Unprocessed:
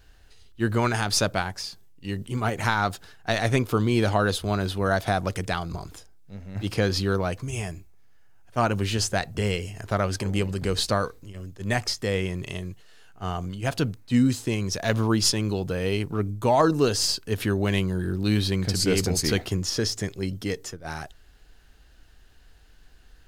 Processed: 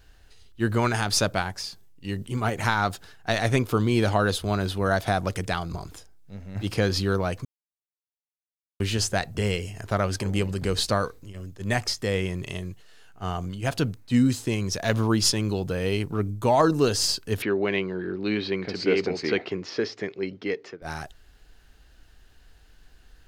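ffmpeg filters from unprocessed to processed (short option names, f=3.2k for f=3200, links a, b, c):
-filter_complex "[0:a]asettb=1/sr,asplit=3[a][b][c];[a]atrim=end=17.424[d];[b]atrim=start=17.42:end=20.82,asetpts=PTS-STARTPTS,afade=t=in:d=0.004:c=qsin,afade=t=out:st=3.396:d=0.004:c=qsin,highpass=250,equalizer=f=400:t=q:w=4:g=5,equalizer=f=2.2k:t=q:w=4:g=5,equalizer=f=3.4k:t=q:w=4:g=-5,lowpass=f=4k:w=0.5412,lowpass=f=4k:w=1.3066[e];[c]atrim=start=20.816[f];[d][e]acrossfade=d=0.004:c1=hsin:c2=qsin[g];[g][f]acrossfade=d=0.004:c1=qsin:c2=hsin,asplit=3[h][i][j];[h]atrim=end=7.45,asetpts=PTS-STARTPTS,afade=t=out:st=7.446:d=0.004:c=hsin[k];[i]atrim=start=7.45:end=8.8,asetpts=PTS-STARTPTS,volume=0[l];[j]atrim=start=8.8,asetpts=PTS-STARTPTS,afade=t=in:d=0.004:c=hsin[m];[k][l][m]concat=n=3:v=0:a=1"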